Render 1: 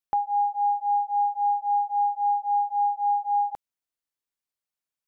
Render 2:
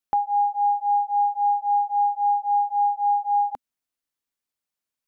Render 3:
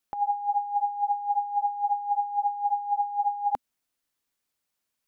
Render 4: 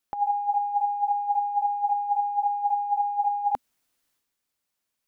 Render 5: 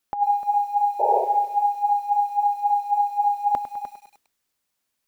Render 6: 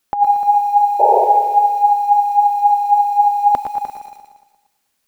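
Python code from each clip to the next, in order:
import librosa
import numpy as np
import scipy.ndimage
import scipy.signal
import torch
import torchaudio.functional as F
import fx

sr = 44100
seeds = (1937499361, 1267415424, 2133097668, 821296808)

y1 = fx.peak_eq(x, sr, hz=250.0, db=5.0, octaves=0.33)
y1 = y1 * 10.0 ** (2.5 / 20.0)
y2 = fx.over_compress(y1, sr, threshold_db=-26.0, ratio=-0.5)
y3 = fx.transient(y2, sr, attack_db=2, sustain_db=7)
y4 = y3 + 10.0 ** (-12.0 / 20.0) * np.pad(y3, (int(301 * sr / 1000.0), 0))[:len(y3)]
y4 = fx.spec_paint(y4, sr, seeds[0], shape='noise', start_s=0.99, length_s=0.26, low_hz=380.0, high_hz=960.0, level_db=-26.0)
y4 = fx.echo_crushed(y4, sr, ms=102, feedback_pct=55, bits=8, wet_db=-12)
y4 = y4 * 10.0 ** (3.5 / 20.0)
y5 = fx.echo_feedback(y4, sr, ms=116, feedback_pct=57, wet_db=-9.0)
y5 = y5 * 10.0 ** (8.0 / 20.0)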